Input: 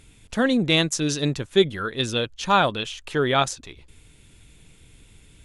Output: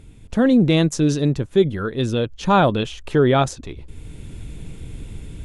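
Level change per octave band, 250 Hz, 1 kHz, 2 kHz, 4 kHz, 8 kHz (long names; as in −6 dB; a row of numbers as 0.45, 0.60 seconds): +7.0, +2.0, −2.5, −5.0, −3.5 decibels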